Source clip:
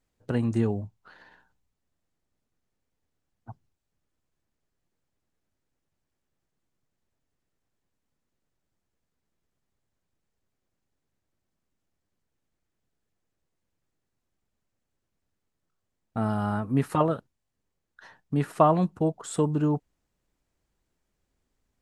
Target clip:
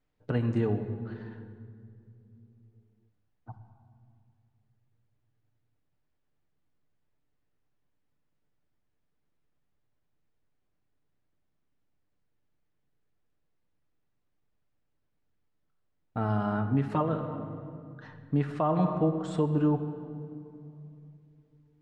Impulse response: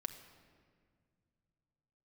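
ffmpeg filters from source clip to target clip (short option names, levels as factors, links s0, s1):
-filter_complex "[0:a]lowpass=3800[s0];[1:a]atrim=start_sample=2205,asetrate=35721,aresample=44100[s1];[s0][s1]afir=irnorm=-1:irlink=0,alimiter=limit=0.15:level=0:latency=1:release=186"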